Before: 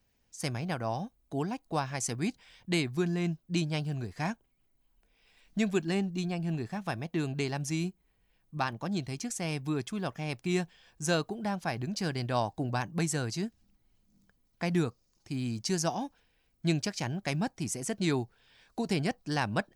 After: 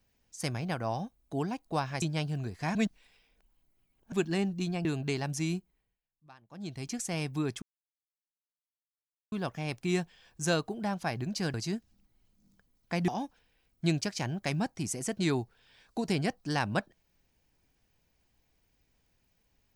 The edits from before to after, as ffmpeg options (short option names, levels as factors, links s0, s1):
-filter_complex "[0:a]asplit=10[s0][s1][s2][s3][s4][s5][s6][s7][s8][s9];[s0]atrim=end=2.022[s10];[s1]atrim=start=3.588:end=4.322[s11];[s2]atrim=start=4.318:end=5.692,asetpts=PTS-STARTPTS,areverse[s12];[s3]atrim=start=5.688:end=6.422[s13];[s4]atrim=start=7.158:end=8.31,asetpts=PTS-STARTPTS,afade=t=out:st=0.712:d=0.44:silence=0.0668344[s14];[s5]atrim=start=8.31:end=8.79,asetpts=PTS-STARTPTS,volume=0.0668[s15];[s6]atrim=start=8.79:end=9.93,asetpts=PTS-STARTPTS,afade=t=in:d=0.44:silence=0.0668344,afade=t=out:st=1.136:d=0.004:c=hsin,apad=pad_dur=1.7[s16];[s7]atrim=start=9.93:end=12.152,asetpts=PTS-STARTPTS,afade=t=in:d=0.004:c=hsin[s17];[s8]atrim=start=13.238:end=14.782[s18];[s9]atrim=start=15.888[s19];[s10][s11]acrossfade=d=0.004:c1=hsin:c2=hsin[s20];[s20][s12]acrossfade=d=0.004:c1=hsin:c2=hsin[s21];[s21][s13]acrossfade=d=0.004:c1=hsin:c2=hsin[s22];[s14][s15][s16][s17]concat=n=4:v=0:a=1[s23];[s22][s23]acrossfade=d=0.004:c1=hsin:c2=hsin[s24];[s24][s18]acrossfade=d=0.004:c1=hsin:c2=hsin[s25];[s25][s19]acrossfade=d=0.004:c1=hsin:c2=hsin"